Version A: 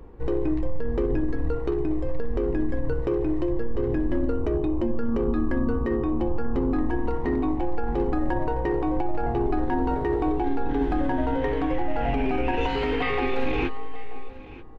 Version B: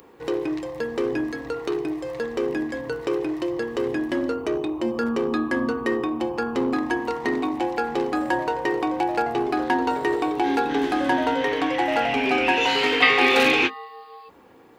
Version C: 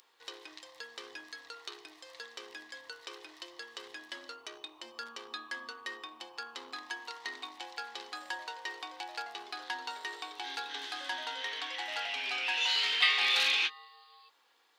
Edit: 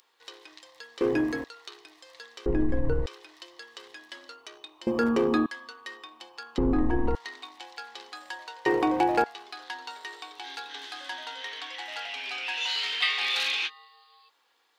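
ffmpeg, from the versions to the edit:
-filter_complex "[1:a]asplit=3[a][b][c];[0:a]asplit=2[d][e];[2:a]asplit=6[f][g][h][i][j][k];[f]atrim=end=1.012[l];[a]atrim=start=1.008:end=1.442[m];[g]atrim=start=1.438:end=2.462[n];[d]atrim=start=2.458:end=3.062[o];[h]atrim=start=3.058:end=4.872[p];[b]atrim=start=4.868:end=5.462[q];[i]atrim=start=5.458:end=6.582[r];[e]atrim=start=6.578:end=7.152[s];[j]atrim=start=7.148:end=8.662[t];[c]atrim=start=8.658:end=9.242[u];[k]atrim=start=9.238[v];[l][m]acrossfade=d=0.004:c1=hsin:c2=hsin[w];[w][n]acrossfade=d=0.004:c1=hsin:c2=hsin[x];[x][o]acrossfade=d=0.004:c1=hsin:c2=hsin[y];[y][p]acrossfade=d=0.004:c1=hsin:c2=hsin[z];[z][q]acrossfade=d=0.004:c1=hsin:c2=hsin[aa];[aa][r]acrossfade=d=0.004:c1=hsin:c2=hsin[ab];[ab][s]acrossfade=d=0.004:c1=hsin:c2=hsin[ac];[ac][t]acrossfade=d=0.004:c1=hsin:c2=hsin[ad];[ad][u]acrossfade=d=0.004:c1=hsin:c2=hsin[ae];[ae][v]acrossfade=d=0.004:c1=hsin:c2=hsin"

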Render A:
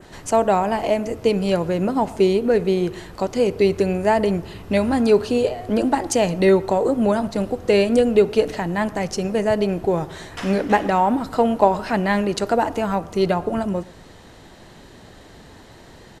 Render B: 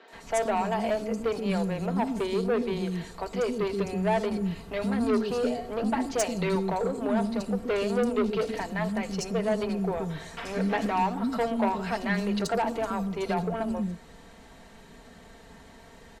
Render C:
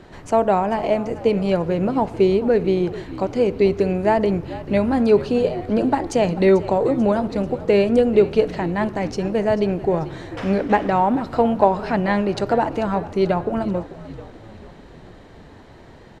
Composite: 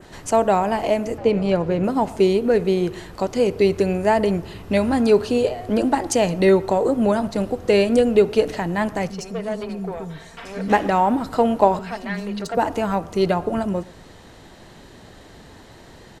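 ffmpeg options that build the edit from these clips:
-filter_complex "[1:a]asplit=2[a][b];[0:a]asplit=4[c][d][e][f];[c]atrim=end=1.182[g];[2:a]atrim=start=1.178:end=1.842[h];[d]atrim=start=1.838:end=9.102[i];[a]atrim=start=9.098:end=10.682[j];[e]atrim=start=10.678:end=11.792[k];[b]atrim=start=11.788:end=12.572[l];[f]atrim=start=12.568[m];[g][h]acrossfade=d=0.004:c1=hsin:c2=hsin[n];[n][i]acrossfade=d=0.004:c1=hsin:c2=hsin[o];[o][j]acrossfade=d=0.004:c1=hsin:c2=hsin[p];[p][k]acrossfade=d=0.004:c1=hsin:c2=hsin[q];[q][l]acrossfade=d=0.004:c1=hsin:c2=hsin[r];[r][m]acrossfade=d=0.004:c1=hsin:c2=hsin"

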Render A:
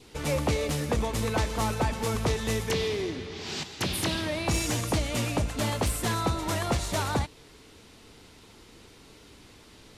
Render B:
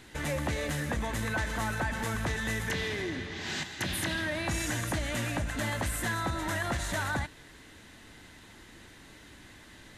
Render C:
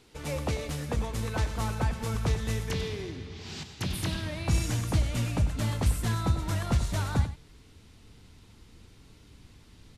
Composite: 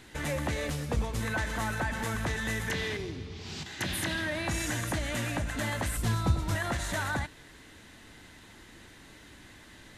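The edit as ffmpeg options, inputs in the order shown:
-filter_complex "[2:a]asplit=3[a][b][c];[1:a]asplit=4[d][e][f][g];[d]atrim=end=0.702[h];[a]atrim=start=0.698:end=1.202[i];[e]atrim=start=1.198:end=2.972[j];[b]atrim=start=2.968:end=3.662[k];[f]atrim=start=3.658:end=5.972[l];[c]atrim=start=5.968:end=6.552[m];[g]atrim=start=6.548[n];[h][i]acrossfade=d=0.004:c1=hsin:c2=hsin[o];[o][j]acrossfade=d=0.004:c1=hsin:c2=hsin[p];[p][k]acrossfade=d=0.004:c1=hsin:c2=hsin[q];[q][l]acrossfade=d=0.004:c1=hsin:c2=hsin[r];[r][m]acrossfade=d=0.004:c1=hsin:c2=hsin[s];[s][n]acrossfade=d=0.004:c1=hsin:c2=hsin"

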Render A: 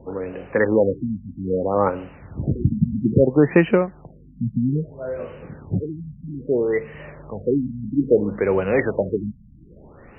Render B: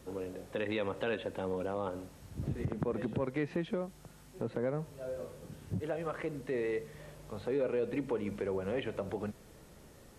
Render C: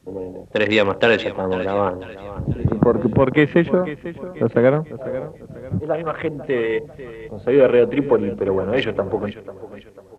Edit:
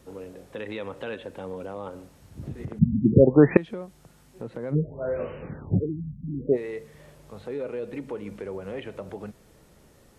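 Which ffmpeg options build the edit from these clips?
-filter_complex "[0:a]asplit=2[a][b];[1:a]asplit=3[c][d][e];[c]atrim=end=2.792[f];[a]atrim=start=2.788:end=3.572[g];[d]atrim=start=3.568:end=4.76[h];[b]atrim=start=4.7:end=6.58[i];[e]atrim=start=6.52[j];[f][g]acrossfade=d=0.004:c1=hsin:c2=hsin[k];[k][h]acrossfade=d=0.004:c1=hsin:c2=hsin[l];[l][i]acrossfade=d=0.06:c1=tri:c2=tri[m];[m][j]acrossfade=d=0.06:c1=tri:c2=tri"

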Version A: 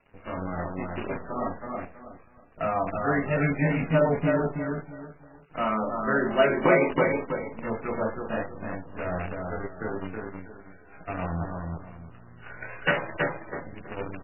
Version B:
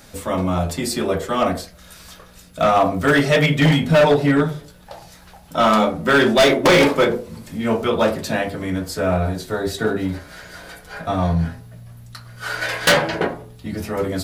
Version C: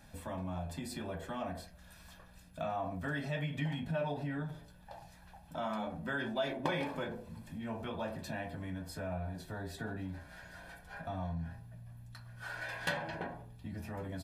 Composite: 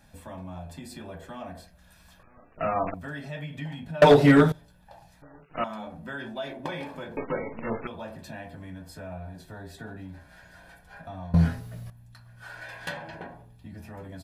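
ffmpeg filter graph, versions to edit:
-filter_complex "[0:a]asplit=3[a][b][c];[1:a]asplit=2[d][e];[2:a]asplit=6[f][g][h][i][j][k];[f]atrim=end=2.232[l];[a]atrim=start=2.228:end=2.942[m];[g]atrim=start=2.938:end=4.022[n];[d]atrim=start=4.018:end=4.522[o];[h]atrim=start=4.518:end=5.222[p];[b]atrim=start=5.218:end=5.642[q];[i]atrim=start=5.638:end=7.172[r];[c]atrim=start=7.168:end=7.872[s];[j]atrim=start=7.868:end=11.342[t];[e]atrim=start=11.338:end=11.902[u];[k]atrim=start=11.898[v];[l][m]acrossfade=d=0.004:c1=hsin:c2=hsin[w];[w][n]acrossfade=d=0.004:c1=hsin:c2=hsin[x];[x][o]acrossfade=d=0.004:c1=hsin:c2=hsin[y];[y][p]acrossfade=d=0.004:c1=hsin:c2=hsin[z];[z][q]acrossfade=d=0.004:c1=hsin:c2=hsin[aa];[aa][r]acrossfade=d=0.004:c1=hsin:c2=hsin[ab];[ab][s]acrossfade=d=0.004:c1=hsin:c2=hsin[ac];[ac][t]acrossfade=d=0.004:c1=hsin:c2=hsin[ad];[ad][u]acrossfade=d=0.004:c1=hsin:c2=hsin[ae];[ae][v]acrossfade=d=0.004:c1=hsin:c2=hsin"

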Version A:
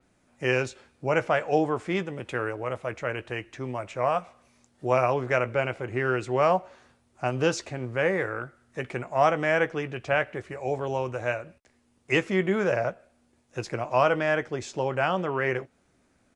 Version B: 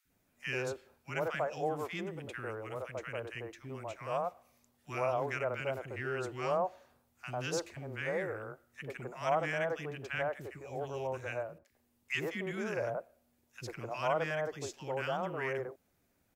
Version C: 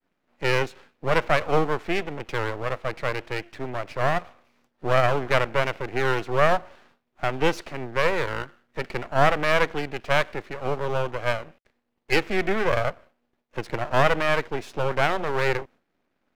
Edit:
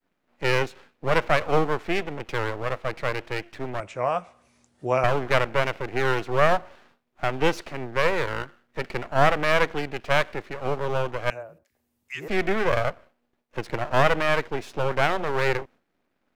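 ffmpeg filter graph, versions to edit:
-filter_complex "[2:a]asplit=3[a][b][c];[a]atrim=end=3.802[d];[0:a]atrim=start=3.798:end=5.042[e];[b]atrim=start=5.038:end=11.302[f];[1:a]atrim=start=11.298:end=12.282[g];[c]atrim=start=12.278[h];[d][e]acrossfade=d=0.004:c1=hsin:c2=hsin[i];[i][f]acrossfade=d=0.004:c1=hsin:c2=hsin[j];[j][g]acrossfade=d=0.004:c1=hsin:c2=hsin[k];[k][h]acrossfade=d=0.004:c1=hsin:c2=hsin"

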